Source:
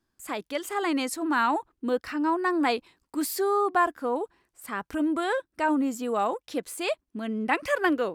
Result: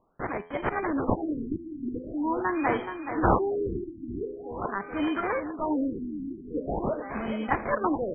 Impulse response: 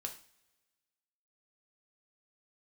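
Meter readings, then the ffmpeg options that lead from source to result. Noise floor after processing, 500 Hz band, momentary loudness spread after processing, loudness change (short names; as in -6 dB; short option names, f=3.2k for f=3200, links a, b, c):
-44 dBFS, -1.5 dB, 9 LU, -2.0 dB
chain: -filter_complex "[0:a]aemphasis=mode=production:type=75fm,bandreject=f=84.8:t=h:w=4,bandreject=f=169.6:t=h:w=4,bandreject=f=254.4:t=h:w=4,bandreject=f=339.2:t=h:w=4,bandreject=f=424:t=h:w=4,bandreject=f=508.8:t=h:w=4,bandreject=f=593.6:t=h:w=4,bandreject=f=678.4:t=h:w=4,bandreject=f=763.2:t=h:w=4,bandreject=f=848:t=h:w=4,bandreject=f=932.8:t=h:w=4,bandreject=f=1.0176k:t=h:w=4,bandreject=f=1.1024k:t=h:w=4,bandreject=f=1.1872k:t=h:w=4,bandreject=f=1.272k:t=h:w=4,areverse,acompressor=mode=upward:threshold=-26dB:ratio=2.5,areverse,acrusher=samples=16:mix=1:aa=0.000001,asplit=2[a][b];[b]aecho=0:1:425|850|1275|1700|2125|2550|2975:0.355|0.202|0.115|0.0657|0.0375|0.0213|0.0122[c];[a][c]amix=inputs=2:normalize=0,afftfilt=real='re*lt(b*sr/1024,360*pow(3300/360,0.5+0.5*sin(2*PI*0.44*pts/sr)))':imag='im*lt(b*sr/1024,360*pow(3300/360,0.5+0.5*sin(2*PI*0.44*pts/sr)))':win_size=1024:overlap=0.75,volume=-1.5dB"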